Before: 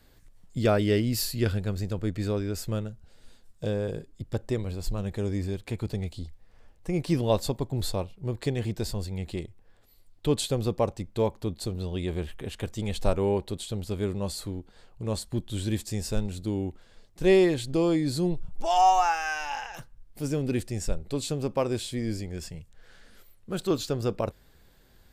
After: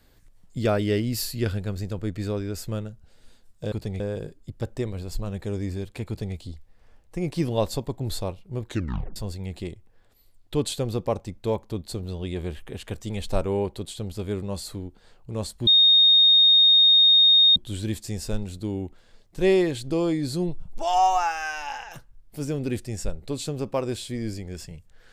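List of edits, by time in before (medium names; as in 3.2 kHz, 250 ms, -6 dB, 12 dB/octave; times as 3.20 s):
5.80–6.08 s: copy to 3.72 s
8.38 s: tape stop 0.50 s
15.39 s: add tone 3.7 kHz -12.5 dBFS 1.89 s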